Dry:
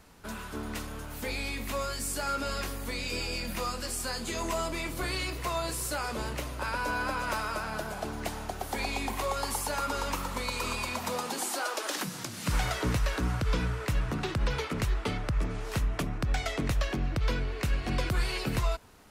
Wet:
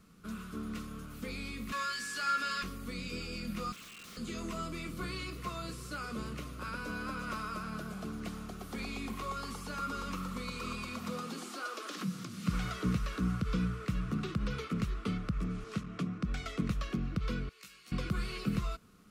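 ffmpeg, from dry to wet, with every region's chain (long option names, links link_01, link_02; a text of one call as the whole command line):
ffmpeg -i in.wav -filter_complex "[0:a]asettb=1/sr,asplit=3[link_01][link_02][link_03];[link_01]atrim=end=1.724[link_04];[link_02]atrim=start=1.72:end=2.63,asetpts=PTS-STARTPTS,afade=type=in:duration=0.004:curve=qsin,afade=type=out:start_time=0.906:duration=0.004:curve=qsin,tiltshelf=frequency=670:gain=-9.5,aeval=exprs='val(0)+0.0355*sin(2*PI*1700*n/s)':channel_layout=same,highpass=frequency=170:poles=1[link_05];[link_03]atrim=start=2.626[link_06];[link_04][link_05]acrossfade=duration=0.004:curve1=hsin:curve2=qsin[link_07];[link_07][link_06]acrossfade=duration=0.004:curve1=qsin:curve2=hsin,asettb=1/sr,asplit=3[link_08][link_09][link_10];[link_08]atrim=end=3.724[link_11];[link_09]atrim=start=3.72:end=4.17,asetpts=PTS-STARTPTS,afade=type=in:duration=0.004:curve=qsin,afade=type=out:start_time=0.446:duration=0.004:curve=qsin,lowpass=frequency=2400:width_type=q:width=0.5098,lowpass=frequency=2400:width_type=q:width=0.6013,lowpass=frequency=2400:width_type=q:width=0.9,lowpass=frequency=2400:width_type=q:width=2.563,afreqshift=-2800,aeval=exprs='(mod(59.6*val(0)+1,2)-1)/59.6':channel_layout=same[link_12];[link_10]atrim=start=4.166[link_13];[link_11][link_12]acrossfade=duration=0.004:curve1=hsin:curve2=qsin[link_14];[link_14][link_13]acrossfade=duration=0.004:curve1=qsin:curve2=hsin,asettb=1/sr,asplit=3[link_15][link_16][link_17];[link_15]atrim=end=15.644[link_18];[link_16]atrim=start=15.64:end=16.25,asetpts=PTS-STARTPTS,afade=type=in:duration=0.004:curve=qsin,afade=type=out:start_time=0.606:duration=0.004:curve=qsin,aeval=exprs='clip(val(0),-1,0.0562)':channel_layout=same,highpass=120,lowpass=7700[link_19];[link_17]atrim=start=16.246[link_20];[link_18][link_19]acrossfade=duration=0.004:curve1=hsin:curve2=qsin[link_21];[link_21][link_20]acrossfade=duration=0.004:curve1=qsin:curve2=hsin,asettb=1/sr,asplit=3[link_22][link_23][link_24];[link_22]atrim=end=17.494[link_25];[link_23]atrim=start=17.49:end=17.92,asetpts=PTS-STARTPTS,afade=type=in:duration=0.004:curve=qsin,afade=type=out:start_time=0.426:duration=0.004:curve=qsin,aderivative,asplit=2[link_26][link_27];[link_27]adelay=16,volume=-2dB[link_28];[link_26][link_28]amix=inputs=2:normalize=0,atrim=end_sample=18963[link_29];[link_24]atrim=start=17.916[link_30];[link_25][link_29]acrossfade=duration=0.004:curve1=hsin:curve2=qsin[link_31];[link_31][link_30]acrossfade=duration=0.004:curve1=qsin:curve2=hsin,superequalizer=8b=0.501:9b=0.316:10b=1.58:11b=0.708,acrossover=split=5900[link_32][link_33];[link_33]acompressor=threshold=-47dB:ratio=4:attack=1:release=60[link_34];[link_32][link_34]amix=inputs=2:normalize=0,equalizer=frequency=190:width_type=o:width=0.69:gain=13.5,volume=-8dB" out.wav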